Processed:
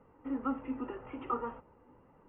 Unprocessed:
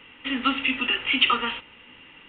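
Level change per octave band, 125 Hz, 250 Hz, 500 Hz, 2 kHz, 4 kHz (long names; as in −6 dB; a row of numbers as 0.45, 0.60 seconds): −4.0 dB, −7.0 dB, −3.5 dB, −30.0 dB, below −40 dB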